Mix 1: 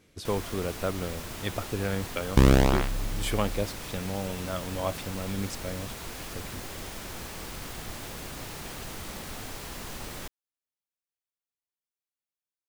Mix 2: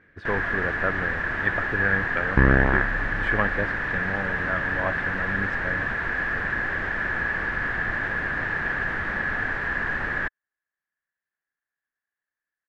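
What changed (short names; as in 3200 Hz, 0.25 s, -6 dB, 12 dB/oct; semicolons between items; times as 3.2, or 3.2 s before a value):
first sound +6.5 dB; second sound: add air absorption 490 m; master: add synth low-pass 1700 Hz, resonance Q 14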